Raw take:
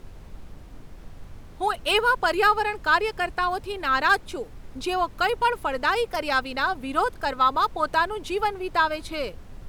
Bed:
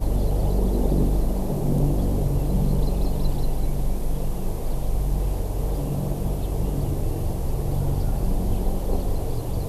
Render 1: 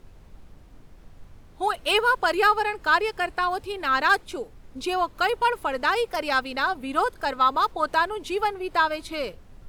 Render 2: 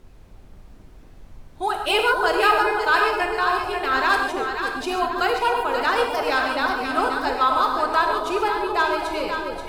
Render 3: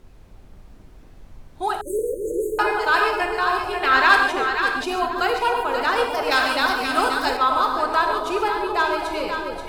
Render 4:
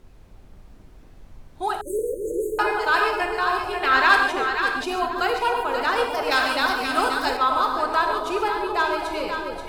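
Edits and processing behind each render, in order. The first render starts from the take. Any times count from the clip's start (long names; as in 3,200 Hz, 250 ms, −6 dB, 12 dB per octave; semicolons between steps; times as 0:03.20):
noise reduction from a noise print 6 dB
delay that swaps between a low-pass and a high-pass 266 ms, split 810 Hz, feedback 65%, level −3 dB; reverb whose tail is shaped and stops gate 170 ms flat, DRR 3 dB
0:01.81–0:02.59: linear-phase brick-wall band-stop 580–6,200 Hz; 0:03.82–0:04.84: parametric band 2,200 Hz +6.5 dB 2.4 octaves; 0:06.31–0:07.37: high-shelf EQ 2,400 Hz +9 dB
level −1.5 dB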